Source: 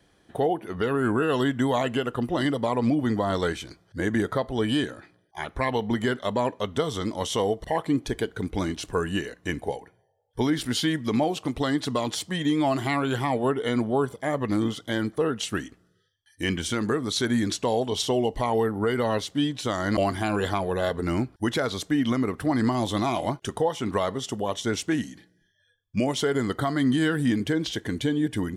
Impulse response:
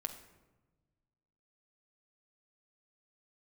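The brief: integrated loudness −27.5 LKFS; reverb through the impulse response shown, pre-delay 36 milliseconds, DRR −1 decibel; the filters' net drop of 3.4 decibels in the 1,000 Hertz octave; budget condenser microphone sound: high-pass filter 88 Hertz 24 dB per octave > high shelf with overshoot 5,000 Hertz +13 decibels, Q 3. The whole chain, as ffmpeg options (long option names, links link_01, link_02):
-filter_complex "[0:a]equalizer=frequency=1000:width_type=o:gain=-4,asplit=2[link_01][link_02];[1:a]atrim=start_sample=2205,adelay=36[link_03];[link_02][link_03]afir=irnorm=-1:irlink=0,volume=2dB[link_04];[link_01][link_04]amix=inputs=2:normalize=0,highpass=frequency=88:width=0.5412,highpass=frequency=88:width=1.3066,highshelf=frequency=5000:width_type=q:width=3:gain=13,volume=-7.5dB"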